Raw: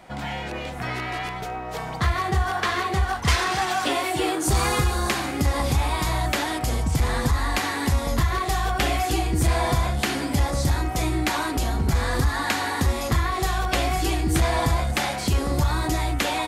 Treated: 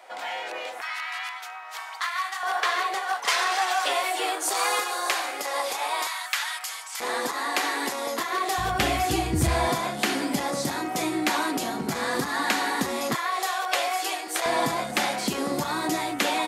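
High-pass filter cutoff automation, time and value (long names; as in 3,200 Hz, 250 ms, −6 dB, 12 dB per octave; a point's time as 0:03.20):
high-pass filter 24 dB per octave
460 Hz
from 0:00.81 1,000 Hz
from 0:02.43 490 Hz
from 0:06.07 1,100 Hz
from 0:07.00 320 Hz
from 0:08.58 77 Hz
from 0:09.69 190 Hz
from 0:13.15 500 Hz
from 0:14.46 190 Hz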